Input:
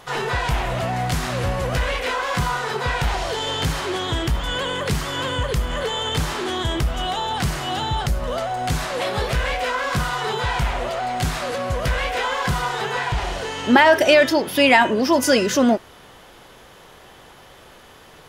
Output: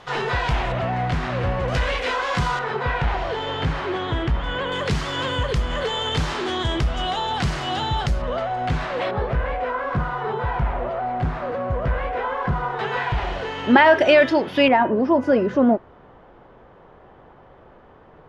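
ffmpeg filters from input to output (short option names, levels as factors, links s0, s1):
-af "asetnsamples=n=441:p=0,asendcmd='0.72 lowpass f 2700;1.68 lowpass f 5700;2.59 lowpass f 2400;4.72 lowpass f 5400;8.22 lowpass f 2700;9.11 lowpass f 1300;12.79 lowpass f 2900;14.68 lowpass f 1100',lowpass=4700"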